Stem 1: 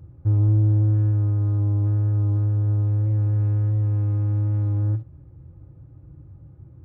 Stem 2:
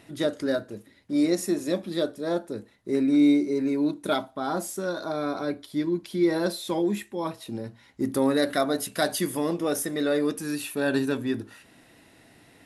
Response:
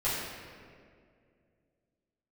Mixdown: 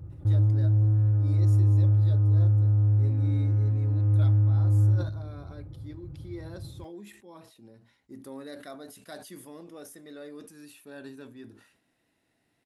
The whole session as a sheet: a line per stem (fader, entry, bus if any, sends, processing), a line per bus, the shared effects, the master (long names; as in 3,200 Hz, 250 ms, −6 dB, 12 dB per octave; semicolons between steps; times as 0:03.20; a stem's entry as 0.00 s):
+0.5 dB, 0.00 s, send −20 dB, downward compressor 2 to 1, threshold −29 dBFS, peak gain reduction 8 dB
−19.0 dB, 0.10 s, no send, no processing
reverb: on, RT60 2.2 s, pre-delay 6 ms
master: level that may fall only so fast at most 80 dB per second